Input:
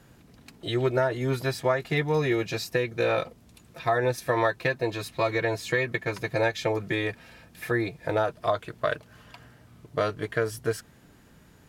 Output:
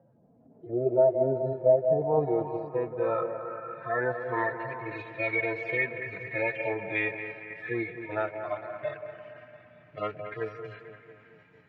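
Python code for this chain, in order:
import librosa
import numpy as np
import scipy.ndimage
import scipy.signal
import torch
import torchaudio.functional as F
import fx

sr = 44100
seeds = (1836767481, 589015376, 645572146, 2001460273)

p1 = fx.hpss_only(x, sr, part='harmonic')
p2 = scipy.signal.sosfilt(scipy.signal.butter(2, 140.0, 'highpass', fs=sr, output='sos'), p1)
p3 = fx.echo_stepped(p2, sr, ms=176, hz=590.0, octaves=0.7, feedback_pct=70, wet_db=-7.5)
p4 = fx.filter_sweep_lowpass(p3, sr, from_hz=610.0, to_hz=2300.0, start_s=1.67, end_s=5.01, q=4.1)
p5 = fx.echo_bbd(p4, sr, ms=227, stages=4096, feedback_pct=58, wet_db=-10.0)
p6 = fx.level_steps(p5, sr, step_db=9)
p7 = p5 + F.gain(torch.from_numpy(p6), -2.5).numpy()
y = F.gain(torch.from_numpy(p7), -8.0).numpy()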